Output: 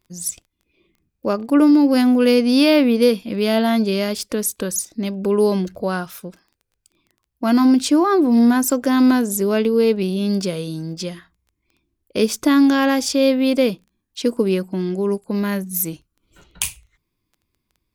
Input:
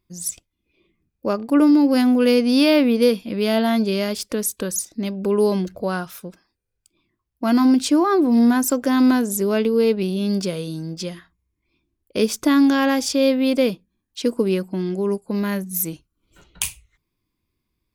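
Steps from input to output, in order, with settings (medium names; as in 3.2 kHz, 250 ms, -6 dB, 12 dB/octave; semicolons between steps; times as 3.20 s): crackle 12 per s -43 dBFS; trim +1.5 dB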